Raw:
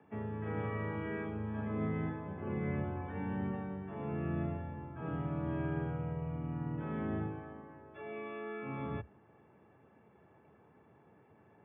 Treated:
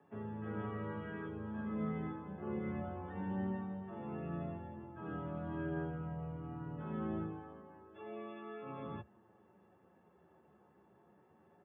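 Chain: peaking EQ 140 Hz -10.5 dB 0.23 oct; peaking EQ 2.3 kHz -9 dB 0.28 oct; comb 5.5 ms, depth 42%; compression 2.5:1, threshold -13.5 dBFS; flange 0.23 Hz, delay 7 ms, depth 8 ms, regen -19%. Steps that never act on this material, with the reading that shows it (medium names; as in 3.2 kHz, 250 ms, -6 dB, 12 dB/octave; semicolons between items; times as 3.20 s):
compression, threshold -13.5 dBFS: peak at its input -25.0 dBFS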